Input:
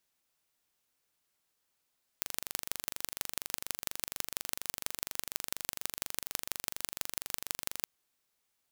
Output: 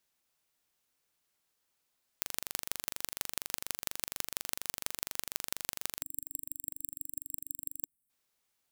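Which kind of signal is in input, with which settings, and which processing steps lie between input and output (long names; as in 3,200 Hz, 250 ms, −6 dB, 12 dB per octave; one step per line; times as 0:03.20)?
impulse train 24.2 per second, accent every 4, −4 dBFS 5.62 s
gain on a spectral selection 0:06.02–0:08.10, 290–7,600 Hz −23 dB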